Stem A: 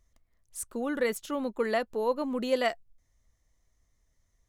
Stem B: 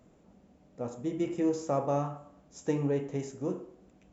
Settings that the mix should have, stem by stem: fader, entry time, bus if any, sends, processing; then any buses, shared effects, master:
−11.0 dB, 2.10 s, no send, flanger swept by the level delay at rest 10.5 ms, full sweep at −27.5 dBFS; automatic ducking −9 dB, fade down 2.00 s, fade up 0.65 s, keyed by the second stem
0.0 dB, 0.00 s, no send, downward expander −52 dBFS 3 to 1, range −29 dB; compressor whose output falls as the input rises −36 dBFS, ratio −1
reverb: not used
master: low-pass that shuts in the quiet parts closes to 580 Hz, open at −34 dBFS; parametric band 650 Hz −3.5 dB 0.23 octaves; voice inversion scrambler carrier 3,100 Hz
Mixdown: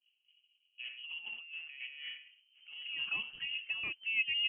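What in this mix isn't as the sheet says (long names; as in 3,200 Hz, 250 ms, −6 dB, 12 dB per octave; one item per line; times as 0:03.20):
stem A −11.0 dB → +1.0 dB
stem B 0.0 dB → −9.5 dB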